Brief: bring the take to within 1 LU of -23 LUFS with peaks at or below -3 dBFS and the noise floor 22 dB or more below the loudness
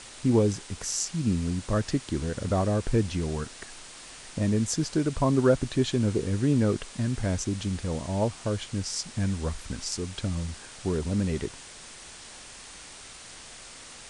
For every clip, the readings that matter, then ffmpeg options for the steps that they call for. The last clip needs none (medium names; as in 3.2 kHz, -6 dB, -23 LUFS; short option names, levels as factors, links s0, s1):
noise floor -46 dBFS; noise floor target -50 dBFS; loudness -28.0 LUFS; peak level -10.5 dBFS; loudness target -23.0 LUFS
-> -af "afftdn=nr=6:nf=-46"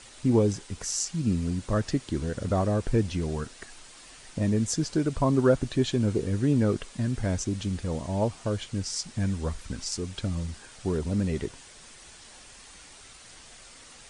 noise floor -50 dBFS; loudness -28.0 LUFS; peak level -10.5 dBFS; loudness target -23.0 LUFS
-> -af "volume=1.78"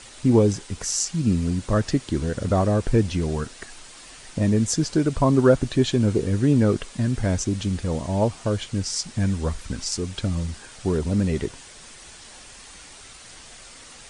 loudness -23.0 LUFS; peak level -5.5 dBFS; noise floor -45 dBFS